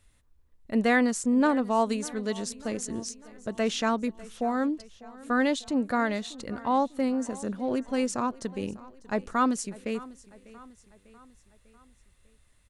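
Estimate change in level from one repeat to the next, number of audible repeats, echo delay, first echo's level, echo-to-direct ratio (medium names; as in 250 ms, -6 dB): -5.5 dB, 3, 597 ms, -20.0 dB, -18.5 dB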